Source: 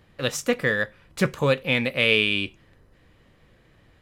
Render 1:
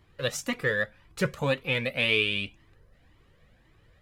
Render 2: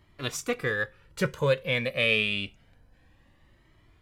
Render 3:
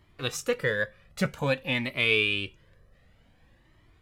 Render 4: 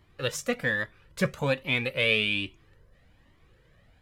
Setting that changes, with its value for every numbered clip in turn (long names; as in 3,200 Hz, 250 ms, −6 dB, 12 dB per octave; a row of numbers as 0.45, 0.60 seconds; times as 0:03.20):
flanger whose copies keep moving one way, speed: 1.9, 0.27, 0.53, 1.2 Hertz